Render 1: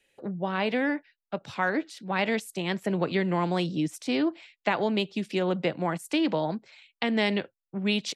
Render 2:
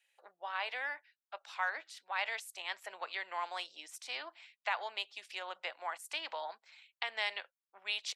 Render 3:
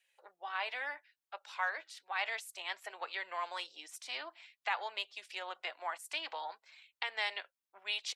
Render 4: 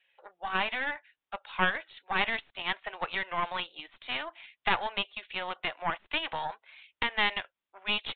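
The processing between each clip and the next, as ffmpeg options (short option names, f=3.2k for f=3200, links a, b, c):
-af "highpass=f=780:w=0.5412,highpass=f=780:w=1.3066,volume=-6dB"
-af "flanger=delay=1.7:depth=1.6:regen=-47:speed=0.59:shape=triangular,volume=4dB"
-af "aeval=exprs='0.133*(cos(1*acos(clip(val(0)/0.133,-1,1)))-cos(1*PI/2))+0.0376*(cos(4*acos(clip(val(0)/0.133,-1,1)))-cos(4*PI/2))':c=same,aresample=8000,aresample=44100,volume=7dB"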